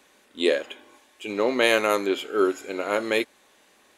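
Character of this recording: noise floor -60 dBFS; spectral tilt -1.0 dB/octave

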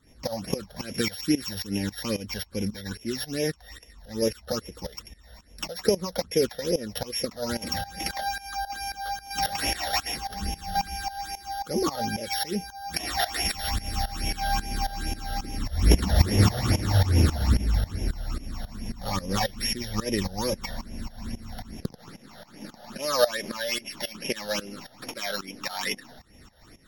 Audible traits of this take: a buzz of ramps at a fixed pitch in blocks of 8 samples; tremolo saw up 3.7 Hz, depth 90%; phasing stages 8, 2.4 Hz, lowest notch 310–1300 Hz; MP3

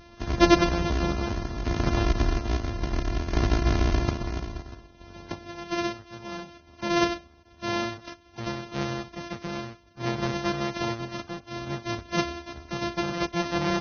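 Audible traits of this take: a buzz of ramps at a fixed pitch in blocks of 128 samples; tremolo saw down 0.6 Hz, depth 55%; Vorbis

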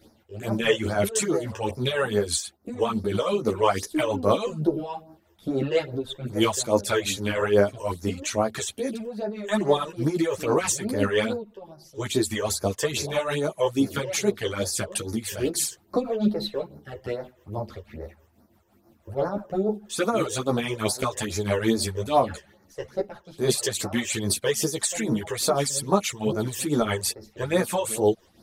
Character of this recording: phasing stages 12, 2.4 Hz, lowest notch 220–3100 Hz; tremolo triangle 6.1 Hz, depth 65%; a shimmering, thickened sound

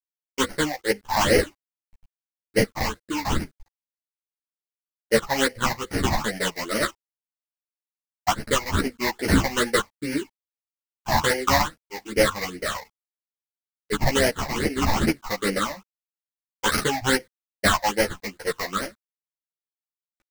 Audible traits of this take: aliases and images of a low sample rate 2.5 kHz, jitter 20%; phasing stages 8, 2.4 Hz, lowest notch 400–1100 Hz; a quantiser's noise floor 12-bit, dither none; a shimmering, thickened sound

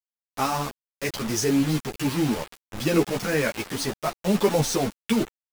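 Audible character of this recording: tremolo saw up 4.3 Hz, depth 35%; a quantiser's noise floor 6-bit, dither none; a shimmering, thickened sound

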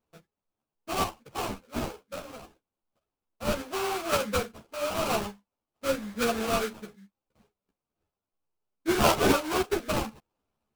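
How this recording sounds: aliases and images of a low sample rate 1.9 kHz, jitter 20%; a shimmering, thickened sound

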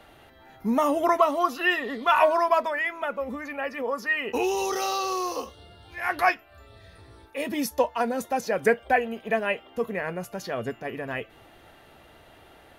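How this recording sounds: noise floor -54 dBFS; spectral tilt -3.5 dB/octave

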